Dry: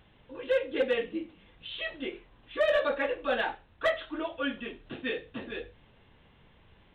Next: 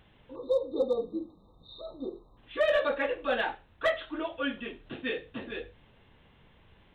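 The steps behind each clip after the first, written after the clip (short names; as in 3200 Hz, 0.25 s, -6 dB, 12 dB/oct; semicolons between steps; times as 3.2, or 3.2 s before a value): spectral delete 0.35–2.38, 1300–3600 Hz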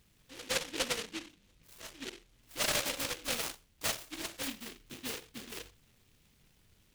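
flange 1.1 Hz, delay 4.5 ms, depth 4.7 ms, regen -73%; noise-modulated delay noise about 2700 Hz, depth 0.4 ms; gain -2.5 dB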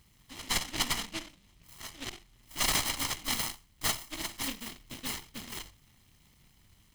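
minimum comb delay 0.98 ms; gain +5 dB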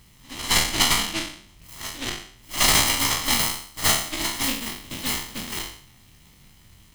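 spectral trails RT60 0.56 s; pre-echo 69 ms -14 dB; gain +8 dB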